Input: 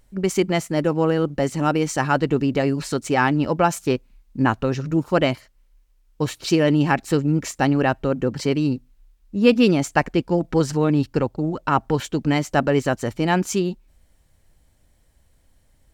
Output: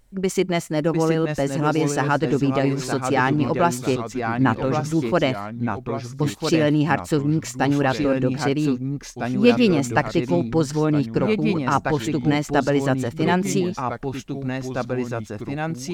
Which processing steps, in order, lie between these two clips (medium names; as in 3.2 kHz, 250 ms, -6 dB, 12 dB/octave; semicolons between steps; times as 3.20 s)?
ever faster or slower copies 674 ms, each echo -2 st, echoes 2, each echo -6 dB; trim -1 dB